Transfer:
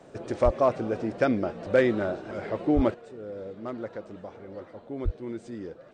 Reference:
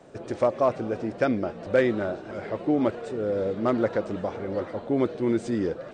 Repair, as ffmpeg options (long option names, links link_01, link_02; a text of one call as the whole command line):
ffmpeg -i in.wav -filter_complex "[0:a]asplit=3[link_01][link_02][link_03];[link_01]afade=type=out:start_time=0.44:duration=0.02[link_04];[link_02]highpass=frequency=140:width=0.5412,highpass=frequency=140:width=1.3066,afade=type=in:start_time=0.44:duration=0.02,afade=type=out:start_time=0.56:duration=0.02[link_05];[link_03]afade=type=in:start_time=0.56:duration=0.02[link_06];[link_04][link_05][link_06]amix=inputs=3:normalize=0,asplit=3[link_07][link_08][link_09];[link_07]afade=type=out:start_time=2.75:duration=0.02[link_10];[link_08]highpass=frequency=140:width=0.5412,highpass=frequency=140:width=1.3066,afade=type=in:start_time=2.75:duration=0.02,afade=type=out:start_time=2.87:duration=0.02[link_11];[link_09]afade=type=in:start_time=2.87:duration=0.02[link_12];[link_10][link_11][link_12]amix=inputs=3:normalize=0,asplit=3[link_13][link_14][link_15];[link_13]afade=type=out:start_time=5.04:duration=0.02[link_16];[link_14]highpass=frequency=140:width=0.5412,highpass=frequency=140:width=1.3066,afade=type=in:start_time=5.04:duration=0.02,afade=type=out:start_time=5.16:duration=0.02[link_17];[link_15]afade=type=in:start_time=5.16:duration=0.02[link_18];[link_16][link_17][link_18]amix=inputs=3:normalize=0,asetnsamples=nb_out_samples=441:pad=0,asendcmd='2.94 volume volume 11.5dB',volume=0dB" out.wav